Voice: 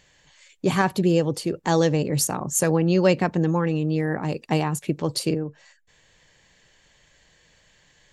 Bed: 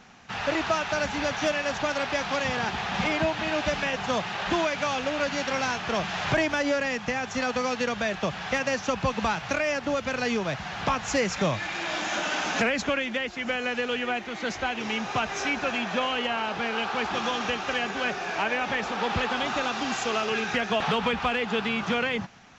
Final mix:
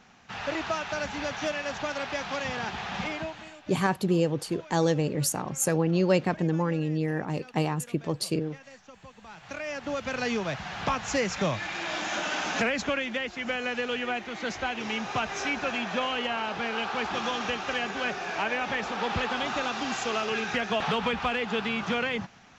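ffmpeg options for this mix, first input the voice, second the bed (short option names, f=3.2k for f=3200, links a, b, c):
-filter_complex "[0:a]adelay=3050,volume=-4.5dB[a];[1:a]volume=16.5dB,afade=t=out:st=2.93:d=0.63:silence=0.11885,afade=t=in:st=9.26:d=0.94:silence=0.0891251[b];[a][b]amix=inputs=2:normalize=0"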